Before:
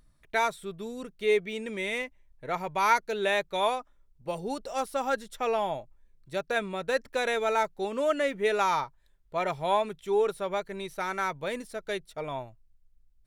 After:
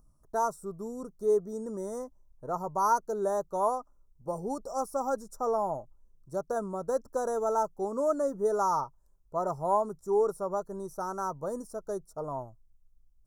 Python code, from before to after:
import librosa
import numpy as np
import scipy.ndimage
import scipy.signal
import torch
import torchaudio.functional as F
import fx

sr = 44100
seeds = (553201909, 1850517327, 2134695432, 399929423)

y = scipy.signal.sosfilt(scipy.signal.ellip(3, 1.0, 80, [1200.0, 5700.0], 'bandstop', fs=sr, output='sos'), x)